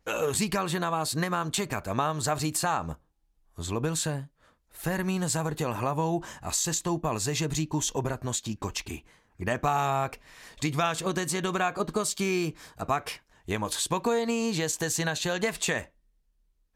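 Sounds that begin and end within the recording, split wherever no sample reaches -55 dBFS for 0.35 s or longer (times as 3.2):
3.55–15.89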